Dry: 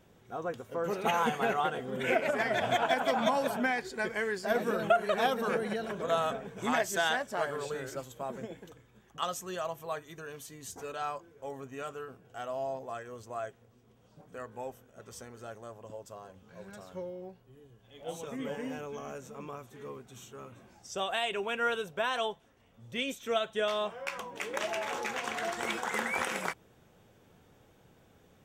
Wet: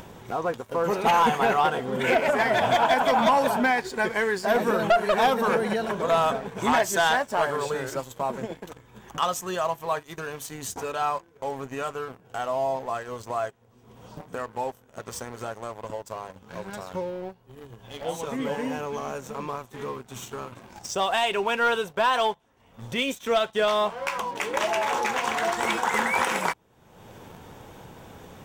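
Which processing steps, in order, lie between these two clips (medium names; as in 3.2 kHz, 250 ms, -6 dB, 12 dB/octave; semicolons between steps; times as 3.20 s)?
peaking EQ 940 Hz +7.5 dB 0.42 oct; waveshaping leveller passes 2; upward compressor, threshold -28 dBFS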